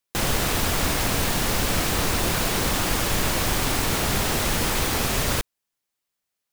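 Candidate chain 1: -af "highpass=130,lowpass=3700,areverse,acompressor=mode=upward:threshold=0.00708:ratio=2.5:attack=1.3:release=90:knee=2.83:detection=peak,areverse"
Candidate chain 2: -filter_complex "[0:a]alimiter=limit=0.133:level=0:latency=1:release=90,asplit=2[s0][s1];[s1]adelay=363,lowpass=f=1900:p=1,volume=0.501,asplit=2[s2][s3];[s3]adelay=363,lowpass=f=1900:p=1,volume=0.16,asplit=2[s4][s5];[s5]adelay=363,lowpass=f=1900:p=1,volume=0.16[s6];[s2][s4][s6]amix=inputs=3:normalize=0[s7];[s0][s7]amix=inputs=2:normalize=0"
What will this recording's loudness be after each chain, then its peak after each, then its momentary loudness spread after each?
-26.0 LUFS, -26.5 LUFS; -14.0 dBFS, -14.5 dBFS; 1 LU, 3 LU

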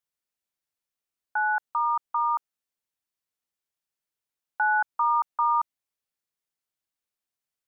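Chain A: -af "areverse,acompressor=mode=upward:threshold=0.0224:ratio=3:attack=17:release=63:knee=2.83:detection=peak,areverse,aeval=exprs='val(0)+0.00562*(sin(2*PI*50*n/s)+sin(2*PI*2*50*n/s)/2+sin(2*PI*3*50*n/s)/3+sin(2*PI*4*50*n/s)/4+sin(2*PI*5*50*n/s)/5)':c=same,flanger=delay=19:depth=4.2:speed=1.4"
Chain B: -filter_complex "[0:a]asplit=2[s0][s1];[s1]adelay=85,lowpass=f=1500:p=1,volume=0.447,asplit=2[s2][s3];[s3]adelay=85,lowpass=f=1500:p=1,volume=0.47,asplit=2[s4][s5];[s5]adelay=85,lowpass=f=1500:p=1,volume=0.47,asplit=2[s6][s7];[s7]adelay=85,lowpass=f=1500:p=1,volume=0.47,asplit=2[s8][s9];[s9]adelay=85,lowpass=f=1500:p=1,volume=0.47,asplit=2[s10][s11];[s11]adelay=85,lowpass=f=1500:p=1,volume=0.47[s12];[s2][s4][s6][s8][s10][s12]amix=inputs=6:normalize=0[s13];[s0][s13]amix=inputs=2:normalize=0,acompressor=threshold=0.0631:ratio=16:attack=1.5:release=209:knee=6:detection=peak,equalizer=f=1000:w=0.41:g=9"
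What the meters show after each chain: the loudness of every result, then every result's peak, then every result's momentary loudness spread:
-28.5 LUFS, -22.5 LUFS; -14.0 dBFS, -11.5 dBFS; 22 LU, 9 LU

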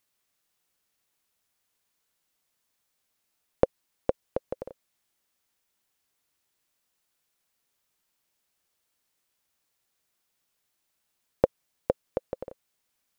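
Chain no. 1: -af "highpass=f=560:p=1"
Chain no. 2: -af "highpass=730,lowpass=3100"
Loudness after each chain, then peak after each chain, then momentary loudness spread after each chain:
-36.5 LUFS, -40.0 LUFS; -8.5 dBFS, -12.0 dBFS; 12 LU, 12 LU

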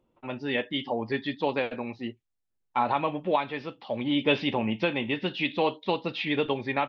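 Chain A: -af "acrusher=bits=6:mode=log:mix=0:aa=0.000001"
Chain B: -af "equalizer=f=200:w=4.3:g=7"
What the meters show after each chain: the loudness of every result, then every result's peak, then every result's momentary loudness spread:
-29.0 LUFS, -28.5 LUFS; -11.5 dBFS, -11.0 dBFS; 9 LU, 10 LU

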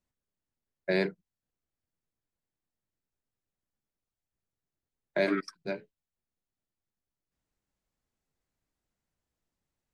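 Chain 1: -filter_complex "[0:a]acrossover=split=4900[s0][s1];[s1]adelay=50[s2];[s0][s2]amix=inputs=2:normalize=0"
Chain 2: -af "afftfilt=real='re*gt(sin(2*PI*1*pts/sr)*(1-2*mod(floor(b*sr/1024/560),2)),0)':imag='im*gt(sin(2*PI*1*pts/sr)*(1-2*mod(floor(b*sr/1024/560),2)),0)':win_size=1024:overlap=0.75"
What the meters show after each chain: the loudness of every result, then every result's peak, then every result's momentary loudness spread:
-32.5 LUFS, -34.5 LUFS; -16.0 dBFS, -17.0 dBFS; 11 LU, 15 LU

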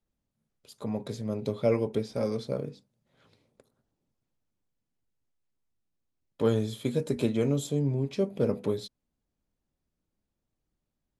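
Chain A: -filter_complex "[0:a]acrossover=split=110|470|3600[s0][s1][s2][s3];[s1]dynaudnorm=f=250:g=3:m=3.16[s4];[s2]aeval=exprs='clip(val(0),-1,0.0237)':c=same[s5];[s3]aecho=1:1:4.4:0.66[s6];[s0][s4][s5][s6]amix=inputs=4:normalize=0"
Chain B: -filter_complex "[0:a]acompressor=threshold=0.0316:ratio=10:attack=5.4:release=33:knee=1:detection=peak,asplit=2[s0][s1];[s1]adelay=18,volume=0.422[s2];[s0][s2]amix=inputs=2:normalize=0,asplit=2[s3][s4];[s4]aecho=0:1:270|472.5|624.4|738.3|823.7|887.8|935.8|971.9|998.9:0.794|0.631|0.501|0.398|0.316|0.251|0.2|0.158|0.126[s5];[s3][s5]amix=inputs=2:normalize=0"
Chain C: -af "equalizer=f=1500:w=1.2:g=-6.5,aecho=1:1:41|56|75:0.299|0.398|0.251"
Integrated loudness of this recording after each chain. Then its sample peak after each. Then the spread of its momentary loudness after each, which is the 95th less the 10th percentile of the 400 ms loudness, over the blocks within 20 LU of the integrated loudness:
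-22.5 LUFS, -31.0 LUFS, -29.0 LUFS; -7.0 dBFS, -16.5 dBFS, -14.0 dBFS; 8 LU, 10 LU, 7 LU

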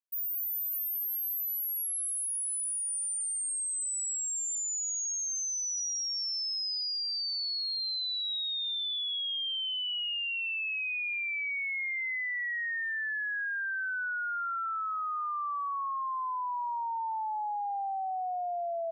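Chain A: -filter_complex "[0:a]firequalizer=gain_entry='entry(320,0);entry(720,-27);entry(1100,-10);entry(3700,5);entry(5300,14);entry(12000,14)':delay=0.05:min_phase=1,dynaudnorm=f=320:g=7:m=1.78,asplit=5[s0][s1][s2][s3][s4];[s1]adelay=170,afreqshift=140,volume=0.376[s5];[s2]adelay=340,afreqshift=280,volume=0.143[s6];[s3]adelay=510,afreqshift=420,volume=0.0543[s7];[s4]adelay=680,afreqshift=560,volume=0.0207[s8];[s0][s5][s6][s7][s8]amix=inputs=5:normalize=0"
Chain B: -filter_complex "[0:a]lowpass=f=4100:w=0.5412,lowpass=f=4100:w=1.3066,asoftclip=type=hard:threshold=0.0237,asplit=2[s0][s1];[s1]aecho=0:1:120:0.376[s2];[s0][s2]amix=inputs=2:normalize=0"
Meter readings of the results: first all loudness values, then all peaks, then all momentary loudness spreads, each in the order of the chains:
-12.5 LUFS, -33.0 LUFS; -7.5 dBFS, -29.5 dBFS; 19 LU, 12 LU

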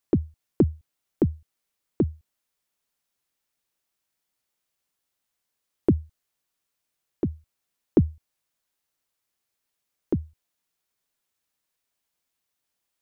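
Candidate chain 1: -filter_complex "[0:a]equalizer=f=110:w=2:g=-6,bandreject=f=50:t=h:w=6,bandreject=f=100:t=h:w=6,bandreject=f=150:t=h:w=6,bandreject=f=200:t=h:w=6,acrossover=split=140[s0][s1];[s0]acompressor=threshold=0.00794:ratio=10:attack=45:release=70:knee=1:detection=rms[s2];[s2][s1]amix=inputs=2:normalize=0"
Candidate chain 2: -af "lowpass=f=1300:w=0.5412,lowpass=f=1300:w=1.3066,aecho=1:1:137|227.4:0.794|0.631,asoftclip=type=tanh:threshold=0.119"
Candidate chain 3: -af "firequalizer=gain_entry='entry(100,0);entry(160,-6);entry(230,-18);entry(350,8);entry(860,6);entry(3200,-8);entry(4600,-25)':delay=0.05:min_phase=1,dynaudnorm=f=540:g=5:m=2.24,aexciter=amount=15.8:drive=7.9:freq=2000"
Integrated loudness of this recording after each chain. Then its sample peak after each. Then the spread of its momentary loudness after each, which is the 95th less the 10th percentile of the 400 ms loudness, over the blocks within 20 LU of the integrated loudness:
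-29.5 LUFS, -29.5 LUFS, -24.0 LUFS; -7.0 dBFS, -18.5 dBFS, -1.0 dBFS; 7 LU, 9 LU, 9 LU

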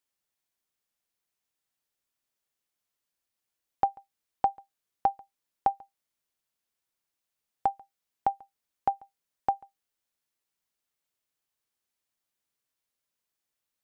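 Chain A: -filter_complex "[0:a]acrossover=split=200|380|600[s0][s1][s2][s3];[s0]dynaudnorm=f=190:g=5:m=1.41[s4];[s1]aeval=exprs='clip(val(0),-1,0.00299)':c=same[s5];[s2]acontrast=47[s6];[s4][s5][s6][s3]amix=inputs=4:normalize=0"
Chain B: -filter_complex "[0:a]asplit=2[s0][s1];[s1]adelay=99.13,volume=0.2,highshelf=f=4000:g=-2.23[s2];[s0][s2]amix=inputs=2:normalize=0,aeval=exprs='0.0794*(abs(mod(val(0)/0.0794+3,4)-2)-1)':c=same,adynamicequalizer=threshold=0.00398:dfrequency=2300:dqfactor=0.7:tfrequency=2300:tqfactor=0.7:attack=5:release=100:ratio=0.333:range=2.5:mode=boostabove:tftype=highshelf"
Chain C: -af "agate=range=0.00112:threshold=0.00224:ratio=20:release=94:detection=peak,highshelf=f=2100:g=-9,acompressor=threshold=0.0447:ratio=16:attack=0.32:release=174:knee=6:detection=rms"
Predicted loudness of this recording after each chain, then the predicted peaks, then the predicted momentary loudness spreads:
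-31.0 LUFS, -36.5 LUFS, -44.5 LUFS; -9.5 dBFS, -20.5 dBFS, -23.5 dBFS; 13 LU, 10 LU, 18 LU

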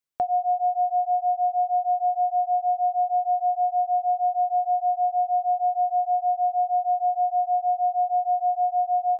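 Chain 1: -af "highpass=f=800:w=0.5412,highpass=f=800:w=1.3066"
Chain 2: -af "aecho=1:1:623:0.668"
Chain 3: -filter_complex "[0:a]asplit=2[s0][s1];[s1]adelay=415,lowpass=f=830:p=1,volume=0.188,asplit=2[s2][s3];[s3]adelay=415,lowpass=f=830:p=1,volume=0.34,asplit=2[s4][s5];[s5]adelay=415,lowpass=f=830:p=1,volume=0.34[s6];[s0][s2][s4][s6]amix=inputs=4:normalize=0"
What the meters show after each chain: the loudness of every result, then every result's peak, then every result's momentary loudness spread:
-29.0 LUFS, -24.0 LUFS, -24.0 LUFS; -22.0 dBFS, -17.0 dBFS, -17.0 dBFS; 1 LU, 1 LU, 1 LU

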